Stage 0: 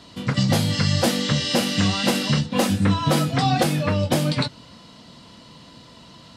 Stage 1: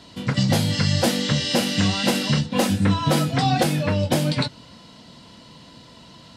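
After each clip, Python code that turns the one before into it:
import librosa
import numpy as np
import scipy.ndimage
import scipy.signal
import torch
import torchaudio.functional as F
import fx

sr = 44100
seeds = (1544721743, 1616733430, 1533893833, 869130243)

y = fx.notch(x, sr, hz=1200.0, q=13.0)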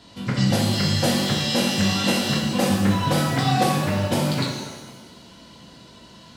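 y = fx.rev_shimmer(x, sr, seeds[0], rt60_s=1.1, semitones=7, shimmer_db=-8, drr_db=-1.0)
y = F.gain(torch.from_numpy(y), -4.0).numpy()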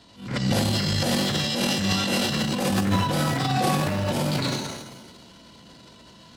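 y = fx.transient(x, sr, attack_db=-11, sustain_db=11)
y = F.gain(torch.from_numpy(y), -3.0).numpy()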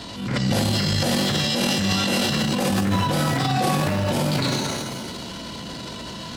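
y = fx.env_flatten(x, sr, amount_pct=50)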